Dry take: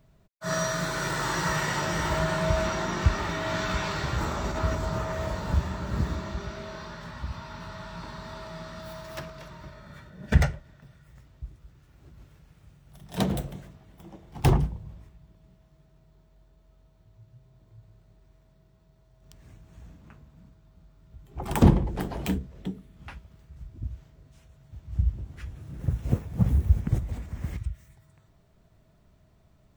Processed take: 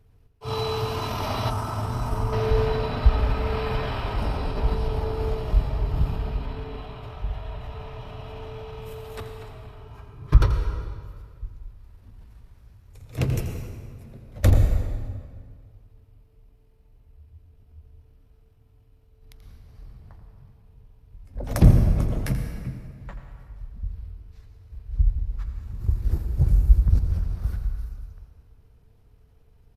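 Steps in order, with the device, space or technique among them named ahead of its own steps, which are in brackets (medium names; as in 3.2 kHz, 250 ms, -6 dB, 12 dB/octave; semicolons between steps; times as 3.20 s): monster voice (pitch shift -6.5 st; bass shelf 120 Hz +7 dB; delay 84 ms -12 dB; reverberation RT60 1.9 s, pre-delay 104 ms, DRR 6 dB); 1.50–2.33 s: ten-band graphic EQ 500 Hz -8 dB, 1 kHz +3 dB, 2 kHz -9 dB, 4 kHz -11 dB, 8 kHz +7 dB, 16 kHz -4 dB; trim -1 dB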